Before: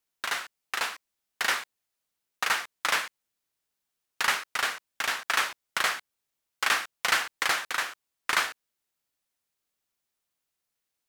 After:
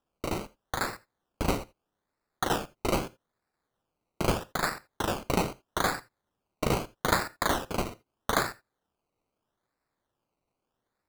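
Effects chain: Bessel high-pass 840 Hz, order 2; decimation with a swept rate 20×, swing 60% 0.79 Hz; on a send: reverberation, pre-delay 3 ms, DRR 19 dB

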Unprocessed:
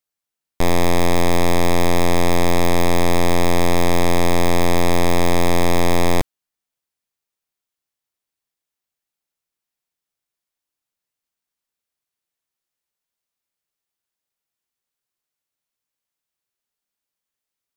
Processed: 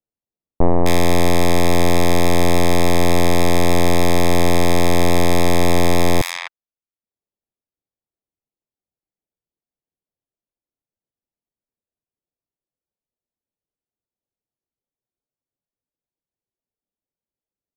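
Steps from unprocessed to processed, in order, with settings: reverb removal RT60 0.62 s; bands offset in time lows, highs 260 ms, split 1.2 kHz; level-controlled noise filter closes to 590 Hz, open at -17 dBFS; trim +4 dB

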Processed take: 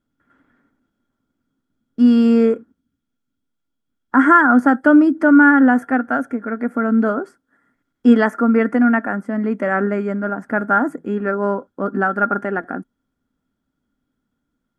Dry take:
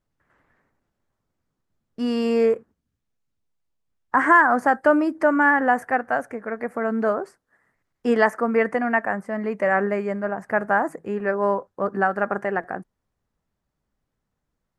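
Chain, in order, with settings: small resonant body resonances 260/1400/3300 Hz, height 17 dB, ringing for 45 ms; trim -1.5 dB

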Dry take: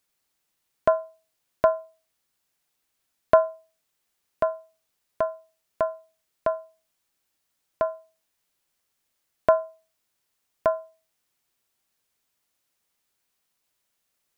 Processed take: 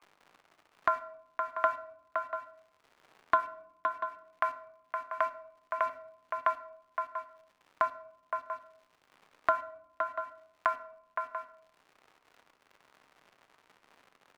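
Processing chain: local Wiener filter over 25 samples; Chebyshev band-pass 1.1–2.3 kHz, order 2; in parallel at -4 dB: bit crusher 7-bit; on the sum: phaser 0.51 Hz, delay 4.7 ms, feedback 35%; crackle 160 per s -61 dBFS; overdrive pedal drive 9 dB, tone 1.3 kHz, clips at -5 dBFS; multi-tap echo 516/689 ms -12/-18 dB; on a send at -11 dB: reverberation RT60 0.60 s, pre-delay 6 ms; on the sum: three bands compressed up and down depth 70%

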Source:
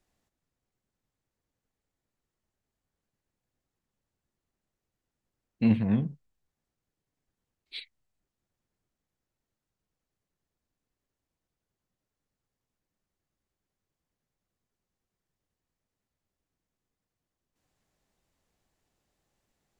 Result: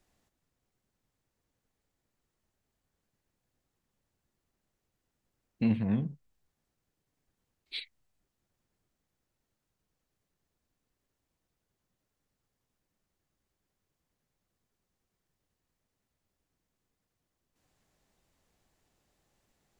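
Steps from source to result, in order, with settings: compression 1.5:1, threshold -41 dBFS, peak gain reduction 8.5 dB; trim +3.5 dB

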